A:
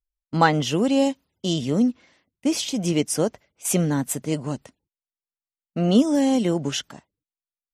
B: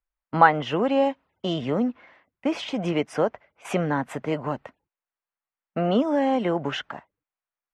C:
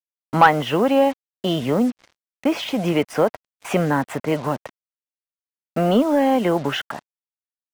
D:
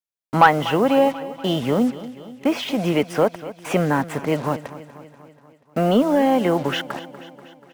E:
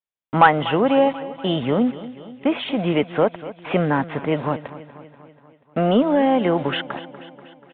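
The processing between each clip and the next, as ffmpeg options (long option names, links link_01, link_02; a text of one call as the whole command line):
ffmpeg -i in.wav -filter_complex "[0:a]acrossover=split=600 2600:gain=0.2 1 0.112[link_01][link_02][link_03];[link_01][link_02][link_03]amix=inputs=3:normalize=0,asplit=2[link_04][link_05];[link_05]acompressor=threshold=-35dB:ratio=6,volume=3dB[link_06];[link_04][link_06]amix=inputs=2:normalize=0,aemphasis=mode=reproduction:type=75fm,volume=3dB" out.wav
ffmpeg -i in.wav -af "acontrast=56,acrusher=bits=5:mix=0:aa=0.5,volume=-1dB" out.wav
ffmpeg -i in.wav -af "aecho=1:1:242|484|726|968|1210|1452:0.158|0.0951|0.0571|0.0342|0.0205|0.0123" out.wav
ffmpeg -i in.wav -af "aresample=8000,aresample=44100" out.wav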